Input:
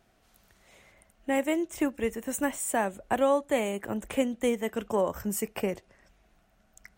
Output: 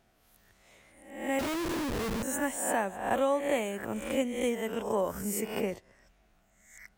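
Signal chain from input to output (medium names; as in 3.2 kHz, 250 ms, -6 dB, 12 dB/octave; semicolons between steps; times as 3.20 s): reverse spectral sustain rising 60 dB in 0.64 s; 1.39–2.23 s: Schmitt trigger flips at -33 dBFS; trim -4 dB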